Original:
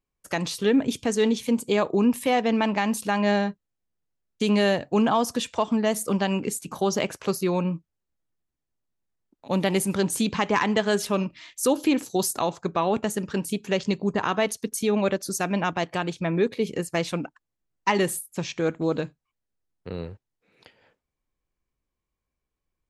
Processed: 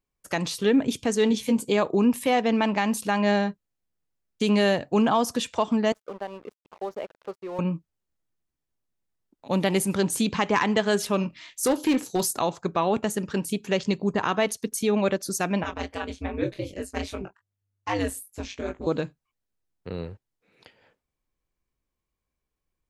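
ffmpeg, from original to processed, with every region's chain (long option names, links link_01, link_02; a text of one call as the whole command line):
ffmpeg -i in.wav -filter_complex "[0:a]asettb=1/sr,asplit=3[link_01][link_02][link_03];[link_01]atrim=end=1.294[link_04];[link_02]atrim=start=1.29:end=1.72,asetpts=PTS-STARTPTS,afade=type=in:duration=0.004:curve=qsin,afade=type=out:start_time=0.426:duration=0.004:curve=qsin,bandreject=frequency=1300:width=11,asplit=2[link_05][link_06];[link_06]adelay=14,volume=-7dB[link_07];[link_05][link_07]amix=inputs=2:normalize=0,atrim=end_sample=18963[link_08];[link_03]atrim=start=1.716[link_09];[link_04][link_08]acrossfade=duration=0.004:curve1=hsin:curve2=qsin[link_10];[link_10][link_09]acrossfade=duration=0.004:curve1=qsin:curve2=hsin,asettb=1/sr,asplit=3[link_11][link_12][link_13];[link_11]atrim=end=5.924[link_14];[link_12]atrim=start=5.92:end=7.59,asetpts=PTS-STARTPTS,afade=type=in:duration=0.004:curve=qsin,afade=type=out:start_time=1.666:duration=0.004:curve=qsin,bandpass=frequency=540:width_type=q:width=1.4,lowshelf=frequency=500:gain=-9.5,aeval=exprs='sgn(val(0))*max(abs(val(0))-0.00422,0)':channel_layout=same[link_15];[link_13]atrim=start=7.586[link_16];[link_14][link_15]acrossfade=duration=0.004:curve1=hsin:curve2=qsin[link_17];[link_17][link_16]acrossfade=duration=0.004:curve1=qsin:curve2=hsin,asettb=1/sr,asplit=3[link_18][link_19][link_20];[link_18]atrim=end=11.224[link_21];[link_19]atrim=start=11.22:end=12.26,asetpts=PTS-STARTPTS,afade=type=in:duration=0.004:curve=qsin,afade=type=out:start_time=1.036:duration=0.004:curve=qsin,asoftclip=type=hard:threshold=-17.5dB,asplit=2[link_22][link_23];[link_23]adelay=23,volume=-13dB[link_24];[link_22][link_24]amix=inputs=2:normalize=0,atrim=end_sample=45864[link_25];[link_20]atrim=start=12.256[link_26];[link_21][link_25]acrossfade=duration=0.004:curve1=hsin:curve2=qsin[link_27];[link_27][link_26]acrossfade=duration=0.004:curve1=qsin:curve2=hsin,asettb=1/sr,asplit=3[link_28][link_29][link_30];[link_28]atrim=end=15.634[link_31];[link_29]atrim=start=15.63:end=18.87,asetpts=PTS-STARTPTS,afade=type=in:duration=0.004:curve=qsin,afade=type=out:start_time=3.236:duration=0.004:curve=qsin,asplit=2[link_32][link_33];[link_33]adelay=17,volume=-9dB[link_34];[link_32][link_34]amix=inputs=2:normalize=0,atrim=end_sample=142884,flanger=delay=19.5:depth=4:speed=2.6,aeval=exprs='val(0)*sin(2*PI*99*n/s)':channel_layout=same[link_35];[link_30]atrim=start=18.866[link_36];[link_31][link_35]acrossfade=duration=0.004:curve1=hsin:curve2=qsin[link_37];[link_37][link_36]acrossfade=duration=0.004:curve1=qsin:curve2=hsin" out.wav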